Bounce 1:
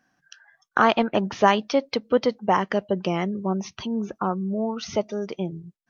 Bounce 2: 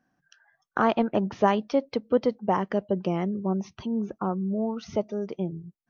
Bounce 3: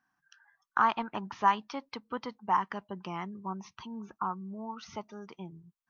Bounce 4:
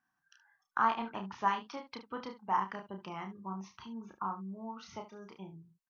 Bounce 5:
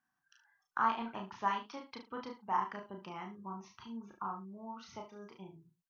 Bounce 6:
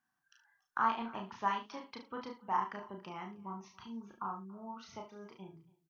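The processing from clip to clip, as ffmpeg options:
ffmpeg -i in.wav -af "tiltshelf=frequency=1100:gain=5.5,volume=-6dB" out.wav
ffmpeg -i in.wav -af "lowshelf=frequency=750:width_type=q:width=3:gain=-9,volume=-3.5dB" out.wav
ffmpeg -i in.wav -af "aecho=1:1:31|73:0.562|0.224,volume=-5dB" out.wav
ffmpeg -i in.wav -filter_complex "[0:a]asplit=2[link_01][link_02];[link_02]adelay=39,volume=-7dB[link_03];[link_01][link_03]amix=inputs=2:normalize=0,volume=-3dB" out.wav
ffmpeg -i in.wav -af "aecho=1:1:282:0.0668" out.wav

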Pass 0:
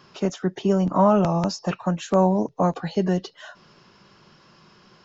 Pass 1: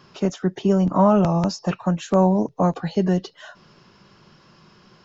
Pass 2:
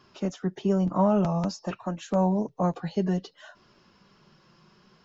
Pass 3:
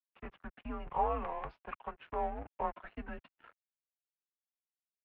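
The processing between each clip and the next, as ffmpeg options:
ffmpeg -i in.wav -af "lowshelf=frequency=240:gain=4.5" out.wav
ffmpeg -i in.wav -af "flanger=delay=2.8:depth=3.1:regen=-49:speed=0.55:shape=triangular,volume=-3dB" out.wav
ffmpeg -i in.wav -af "lowshelf=frequency=750:width_type=q:width=1.5:gain=-10.5,aeval=exprs='sgn(val(0))*max(abs(val(0))-0.00531,0)':channel_layout=same,highpass=frequency=200:width_type=q:width=0.5412,highpass=frequency=200:width_type=q:width=1.307,lowpass=frequency=2800:width_type=q:width=0.5176,lowpass=frequency=2800:width_type=q:width=0.7071,lowpass=frequency=2800:width_type=q:width=1.932,afreqshift=-150,volume=-2dB" out.wav

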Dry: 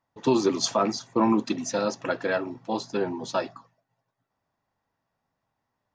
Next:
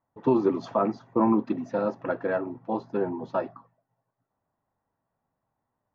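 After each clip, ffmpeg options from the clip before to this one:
ffmpeg -i in.wav -af "lowpass=1300" out.wav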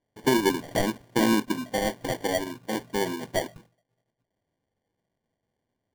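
ffmpeg -i in.wav -af "acrusher=samples=34:mix=1:aa=0.000001" out.wav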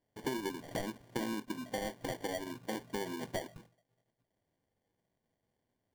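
ffmpeg -i in.wav -af "acompressor=threshold=-33dB:ratio=6,volume=-2dB" out.wav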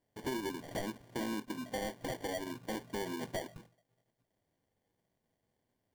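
ffmpeg -i in.wav -af "volume=33dB,asoftclip=hard,volume=-33dB,volume=1dB" out.wav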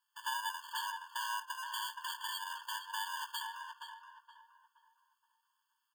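ffmpeg -i in.wav -filter_complex "[0:a]asplit=2[link_01][link_02];[link_02]adelay=472,lowpass=frequency=1800:poles=1,volume=-3dB,asplit=2[link_03][link_04];[link_04]adelay=472,lowpass=frequency=1800:poles=1,volume=0.39,asplit=2[link_05][link_06];[link_06]adelay=472,lowpass=frequency=1800:poles=1,volume=0.39,asplit=2[link_07][link_08];[link_08]adelay=472,lowpass=frequency=1800:poles=1,volume=0.39,asplit=2[link_09][link_10];[link_10]adelay=472,lowpass=frequency=1800:poles=1,volume=0.39[link_11];[link_01][link_03][link_05][link_07][link_09][link_11]amix=inputs=6:normalize=0,afftfilt=real='re*eq(mod(floor(b*sr/1024/890),2),1)':imag='im*eq(mod(floor(b*sr/1024/890),2),1)':win_size=1024:overlap=0.75,volume=7.5dB" out.wav

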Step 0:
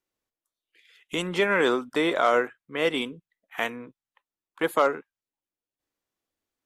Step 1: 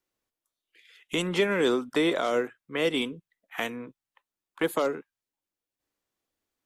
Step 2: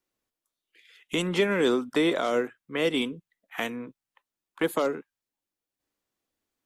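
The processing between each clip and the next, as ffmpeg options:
ffmpeg -i in.wav -filter_complex "[0:a]acrossover=split=480|3000[link_01][link_02][link_03];[link_02]acompressor=threshold=-32dB:ratio=6[link_04];[link_01][link_04][link_03]amix=inputs=3:normalize=0,volume=1.5dB" out.wav
ffmpeg -i in.wav -af "equalizer=frequency=230:width=1.5:gain=2.5" out.wav

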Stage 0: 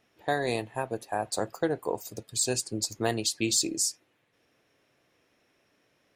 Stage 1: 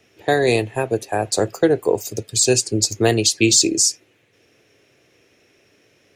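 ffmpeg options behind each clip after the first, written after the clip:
ffmpeg -i in.wav -filter_complex "[0:a]equalizer=frequency=100:width_type=o:width=0.67:gain=7,equalizer=frequency=400:width_type=o:width=0.67:gain=7,equalizer=frequency=1000:width_type=o:width=0.67:gain=-5,equalizer=frequency=2500:width_type=o:width=0.67:gain=5,equalizer=frequency=6300:width_type=o:width=0.67:gain=6,acrossover=split=170|1000|7800[link_01][link_02][link_03][link_04];[link_04]alimiter=level_in=2.5dB:limit=-24dB:level=0:latency=1,volume=-2.5dB[link_05];[link_01][link_02][link_03][link_05]amix=inputs=4:normalize=0,volume=8.5dB" out.wav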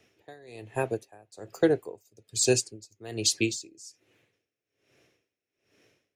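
ffmpeg -i in.wav -af "aeval=exprs='val(0)*pow(10,-28*(0.5-0.5*cos(2*PI*1.2*n/s))/20)':channel_layout=same,volume=-6dB" out.wav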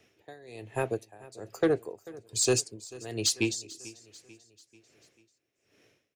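ffmpeg -i in.wav -af "asoftclip=type=tanh:threshold=-16.5dB,aecho=1:1:441|882|1323|1764:0.1|0.051|0.026|0.0133" out.wav

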